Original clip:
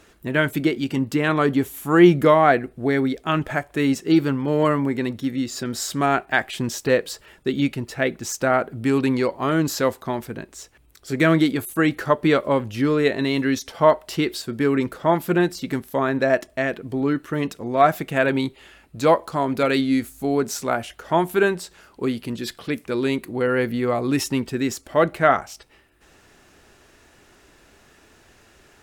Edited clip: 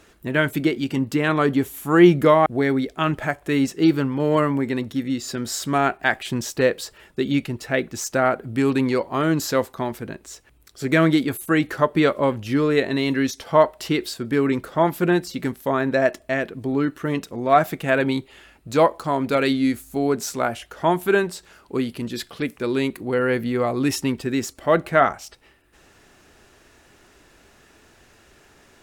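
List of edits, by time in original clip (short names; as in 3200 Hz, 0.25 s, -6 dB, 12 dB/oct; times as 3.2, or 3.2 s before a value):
2.46–2.74 cut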